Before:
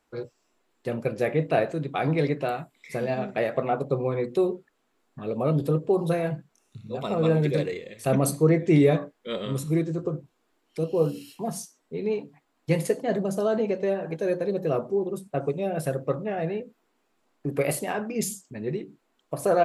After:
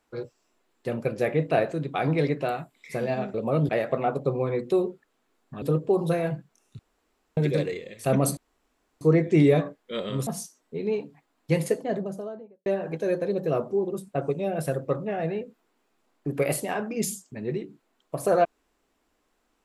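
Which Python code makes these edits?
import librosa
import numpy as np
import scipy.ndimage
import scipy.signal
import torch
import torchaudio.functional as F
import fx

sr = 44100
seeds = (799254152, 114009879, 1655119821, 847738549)

y = fx.studio_fade_out(x, sr, start_s=12.77, length_s=1.08)
y = fx.edit(y, sr, fx.move(start_s=5.27, length_s=0.35, to_s=3.34),
    fx.room_tone_fill(start_s=6.79, length_s=0.58),
    fx.insert_room_tone(at_s=8.37, length_s=0.64),
    fx.cut(start_s=9.63, length_s=1.83), tone=tone)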